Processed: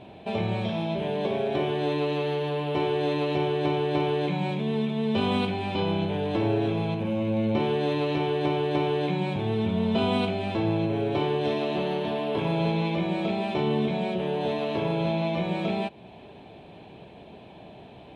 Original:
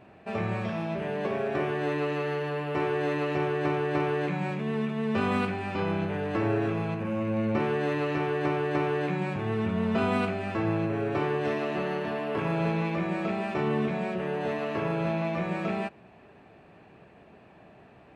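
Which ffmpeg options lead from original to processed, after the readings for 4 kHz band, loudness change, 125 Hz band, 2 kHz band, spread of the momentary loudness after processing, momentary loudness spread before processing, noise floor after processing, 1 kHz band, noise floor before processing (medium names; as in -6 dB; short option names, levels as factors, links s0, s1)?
+8.5 dB, +2.0 dB, +2.5 dB, -2.5 dB, 3 LU, 4 LU, -47 dBFS, +1.5 dB, -54 dBFS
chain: -filter_complex "[0:a]highshelf=f=4600:g=-5.5,asplit=2[s0][s1];[s1]acompressor=threshold=0.0112:ratio=5,volume=1.33[s2];[s0][s2]amix=inputs=2:normalize=0,superequalizer=10b=0.355:11b=0.398:13b=3.16:16b=1.58"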